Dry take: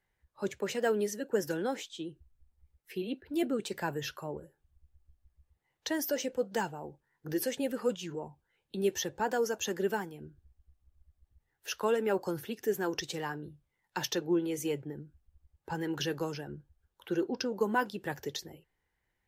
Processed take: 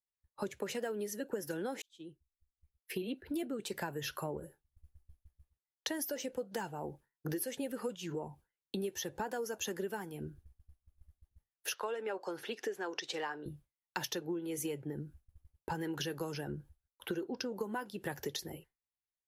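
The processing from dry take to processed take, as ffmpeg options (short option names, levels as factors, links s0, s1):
-filter_complex "[0:a]asettb=1/sr,asplit=3[s0][s1][s2];[s0]atrim=end=11.744[s3];[s1]atrim=start=11.74:end=13.46,asetpts=PTS-STARTPTS,afade=t=in:d=0.004:c=qsin,afade=t=out:st=1.716:d=0.004:c=qsin,highpass=430,lowpass=5100[s4];[s2]atrim=start=13.456[s5];[s3][s4]acrossfade=d=0.004:c1=hsin:c2=qsin[s6];[s6][s5]acrossfade=d=0.004:c1=qsin:c2=hsin,asplit=2[s7][s8];[s7]atrim=end=1.82,asetpts=PTS-STARTPTS,afade=t=out:st=1.816:d=0.004:c=hsin[s9];[s8]atrim=start=1.82,asetpts=PTS-STARTPTS,afade=t=in:d=1.19[s10];[s9][s10]concat=n=2:v=0:a=1,agate=range=0.0224:threshold=0.00178:ratio=3:detection=peak,equalizer=f=11000:t=o:w=0.24:g=11,acompressor=threshold=0.01:ratio=12,volume=1.88"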